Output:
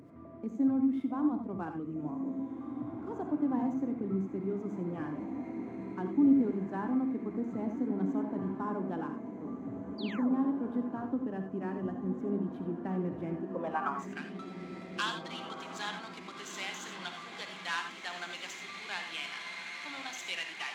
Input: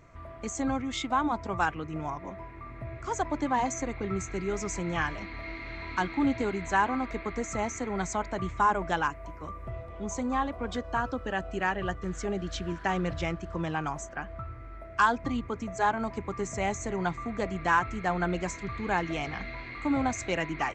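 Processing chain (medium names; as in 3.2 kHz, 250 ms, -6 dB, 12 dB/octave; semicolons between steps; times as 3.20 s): median filter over 9 samples; band-pass sweep 260 Hz -> 3.5 kHz, 13.33–14.23 s; in parallel at -2.5 dB: upward compressor, threshold -39 dBFS; on the sum: high-pass 89 Hz 24 dB/octave; treble shelf 4.2 kHz +9.5 dB; echo that smears into a reverb 1775 ms, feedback 44%, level -9 dB; painted sound fall, 9.98–10.42 s, 220–4900 Hz -44 dBFS; gated-style reverb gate 110 ms rising, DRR 6 dB; trim -2 dB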